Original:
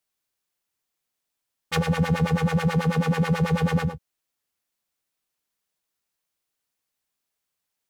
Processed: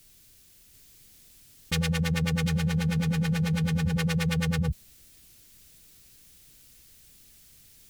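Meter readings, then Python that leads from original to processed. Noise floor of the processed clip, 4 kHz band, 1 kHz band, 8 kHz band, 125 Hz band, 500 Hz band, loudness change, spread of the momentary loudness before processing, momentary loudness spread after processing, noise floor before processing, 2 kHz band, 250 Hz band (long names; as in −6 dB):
−57 dBFS, +2.0 dB, −10.0 dB, +4.0 dB, −1.5 dB, −8.5 dB, −3.5 dB, 4 LU, 3 LU, −83 dBFS, −2.0 dB, −2.5 dB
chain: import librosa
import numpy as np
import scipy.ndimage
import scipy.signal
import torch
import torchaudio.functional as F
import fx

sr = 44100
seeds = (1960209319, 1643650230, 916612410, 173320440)

y = fx.tone_stack(x, sr, knobs='10-0-1')
y = y + 10.0 ** (-3.5 / 20.0) * np.pad(y, (int(739 * sr / 1000.0), 0))[:len(y)]
y = fx.env_flatten(y, sr, amount_pct=100)
y = F.gain(torch.from_numpy(y), 6.0).numpy()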